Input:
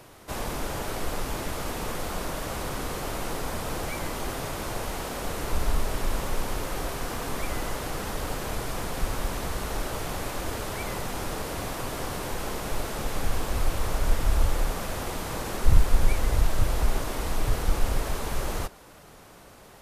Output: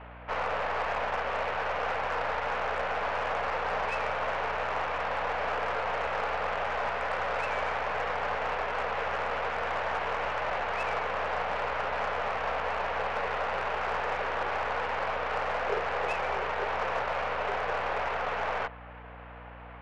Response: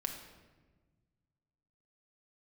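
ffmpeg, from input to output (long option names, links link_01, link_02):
-af "highpass=frequency=160:width_type=q:width=0.5412,highpass=frequency=160:width_type=q:width=1.307,lowpass=frequency=2500:width_type=q:width=0.5176,lowpass=frequency=2500:width_type=q:width=0.7071,lowpass=frequency=2500:width_type=q:width=1.932,afreqshift=290,aeval=exprs='val(0)+0.00282*(sin(2*PI*60*n/s)+sin(2*PI*2*60*n/s)/2+sin(2*PI*3*60*n/s)/3+sin(2*PI*4*60*n/s)/4+sin(2*PI*5*60*n/s)/5)':channel_layout=same,aeval=exprs='0.0891*(cos(1*acos(clip(val(0)/0.0891,-1,1)))-cos(1*PI/2))+0.00501*(cos(8*acos(clip(val(0)/0.0891,-1,1)))-cos(8*PI/2))':channel_layout=same,volume=3.5dB"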